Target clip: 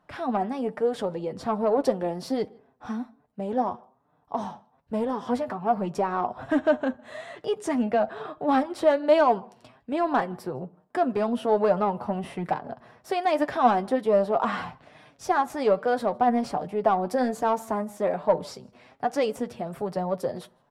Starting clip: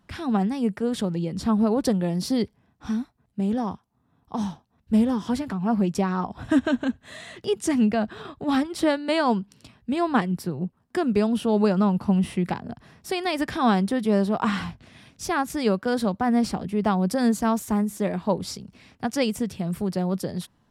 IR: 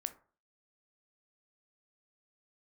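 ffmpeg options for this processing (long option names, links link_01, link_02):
-filter_complex "[0:a]equalizer=frequency=1400:width=0.57:gain=6.5,asoftclip=type=tanh:threshold=-12.5dB,equalizer=frequency=620:width=0.87:gain=13.5,asplit=2[link_01][link_02];[link_02]adelay=157.4,volume=-29dB,highshelf=frequency=4000:gain=-3.54[link_03];[link_01][link_03]amix=inputs=2:normalize=0,asplit=2[link_04][link_05];[1:a]atrim=start_sample=2205,asetrate=32634,aresample=44100[link_06];[link_05][link_06]afir=irnorm=-1:irlink=0,volume=-8dB[link_07];[link_04][link_07]amix=inputs=2:normalize=0,flanger=delay=6.5:depth=1.8:regen=37:speed=1.2:shape=sinusoidal,volume=-8.5dB"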